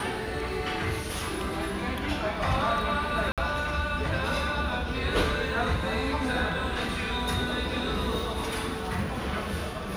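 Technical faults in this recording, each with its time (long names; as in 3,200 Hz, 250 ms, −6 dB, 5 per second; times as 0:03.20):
0:03.32–0:03.38: drop-out 57 ms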